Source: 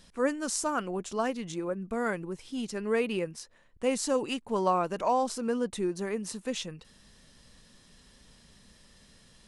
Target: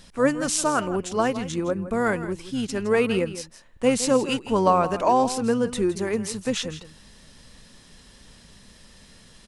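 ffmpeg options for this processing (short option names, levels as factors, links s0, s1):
-filter_complex "[0:a]asplit=2[s0][s1];[s1]asetrate=22050,aresample=44100,atempo=2,volume=0.224[s2];[s0][s2]amix=inputs=2:normalize=0,aecho=1:1:164:0.211,volume=2.24"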